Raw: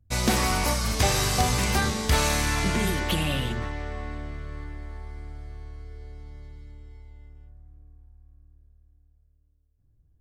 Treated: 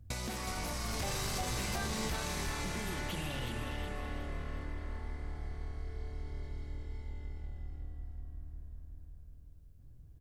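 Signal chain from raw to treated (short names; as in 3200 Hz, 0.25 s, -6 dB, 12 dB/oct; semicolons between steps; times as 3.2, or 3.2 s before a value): limiter -22 dBFS, peak gain reduction 11 dB; compressor 4:1, threshold -48 dBFS, peak gain reduction 17.5 dB; 0.88–2.16 sample leveller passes 1; on a send: frequency-shifting echo 0.368 s, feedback 44%, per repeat -42 Hz, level -5 dB; on the sum: gain +8 dB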